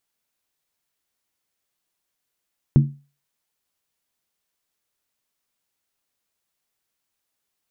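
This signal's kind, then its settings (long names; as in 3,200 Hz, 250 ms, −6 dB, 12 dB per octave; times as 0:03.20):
struck skin, lowest mode 142 Hz, decay 0.33 s, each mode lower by 7.5 dB, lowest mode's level −7 dB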